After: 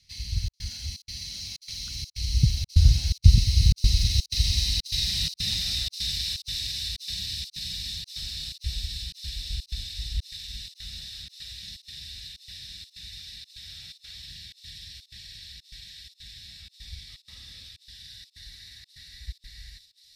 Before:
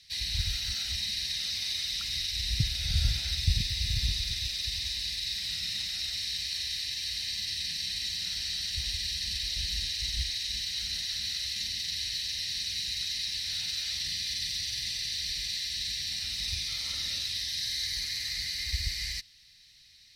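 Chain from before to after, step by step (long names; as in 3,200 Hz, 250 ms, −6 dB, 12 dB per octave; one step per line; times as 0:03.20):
source passing by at 0:04.97, 23 m/s, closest 25 metres
low-shelf EQ 280 Hz +12 dB
gate pattern "xxxx.xxx." 125 BPM −60 dB
on a send: delay with a high-pass on its return 536 ms, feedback 78%, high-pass 4,500 Hz, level −7 dB
on the sum: dynamic equaliser 1,800 Hz, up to −7 dB, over −56 dBFS, Q 1.4
level +7 dB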